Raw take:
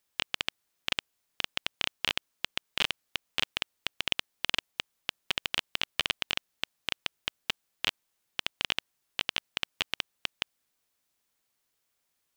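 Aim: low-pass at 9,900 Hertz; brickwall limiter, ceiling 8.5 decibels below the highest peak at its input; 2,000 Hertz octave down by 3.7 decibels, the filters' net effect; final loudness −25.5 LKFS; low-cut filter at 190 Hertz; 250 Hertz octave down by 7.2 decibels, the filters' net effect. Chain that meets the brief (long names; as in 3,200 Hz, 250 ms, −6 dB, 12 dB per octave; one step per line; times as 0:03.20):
high-pass filter 190 Hz
low-pass filter 9,900 Hz
parametric band 250 Hz −8 dB
parametric band 2,000 Hz −5 dB
level +16 dB
brickwall limiter −0.5 dBFS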